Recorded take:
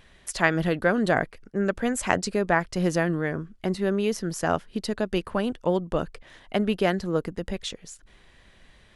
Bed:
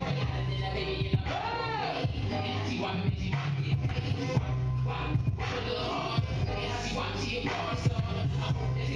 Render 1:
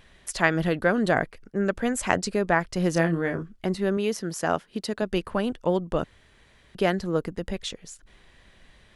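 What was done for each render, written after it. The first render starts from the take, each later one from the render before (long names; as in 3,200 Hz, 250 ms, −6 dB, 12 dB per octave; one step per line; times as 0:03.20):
0:02.93–0:03.43: double-tracking delay 30 ms −6.5 dB
0:03.97–0:05.02: high-pass filter 160 Hz 6 dB per octave
0:06.04–0:06.75: fill with room tone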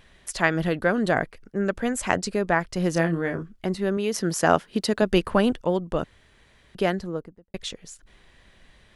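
0:04.14–0:05.61: clip gain +6 dB
0:06.81–0:07.54: fade out and dull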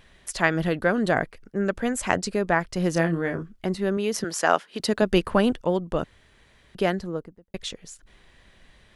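0:04.24–0:04.80: meter weighting curve A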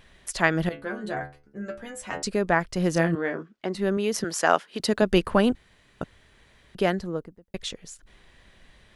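0:00.69–0:02.23: stiff-string resonator 69 Hz, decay 0.39 s, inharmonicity 0.002
0:03.15–0:03.75: band-pass filter 270–5,300 Hz
0:05.55–0:06.01: fill with room tone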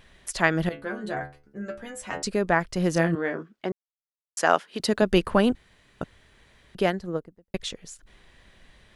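0:03.72–0:04.37: silence
0:06.85–0:07.60: transient designer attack +4 dB, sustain −6 dB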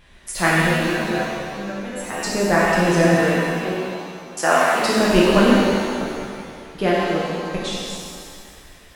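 reverb with rising layers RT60 2.1 s, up +7 semitones, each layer −8 dB, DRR −6.5 dB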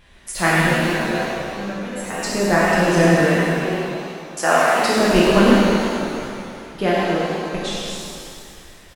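double-tracking delay 30 ms −14 dB
feedback echo with a swinging delay time 106 ms, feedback 70%, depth 178 cents, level −11 dB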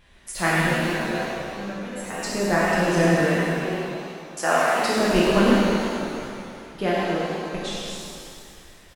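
level −4.5 dB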